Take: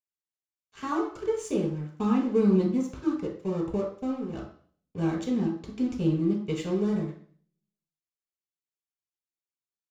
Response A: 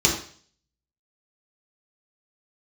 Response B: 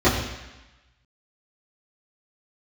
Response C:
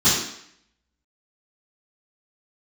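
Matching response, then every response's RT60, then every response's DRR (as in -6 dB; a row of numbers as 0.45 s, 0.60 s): A; 0.45 s, 1.0 s, 0.70 s; -2.5 dB, -12.0 dB, -16.5 dB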